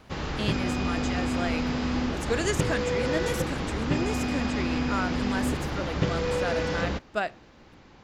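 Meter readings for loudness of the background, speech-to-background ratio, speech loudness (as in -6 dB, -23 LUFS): -29.0 LUFS, -4.5 dB, -33.5 LUFS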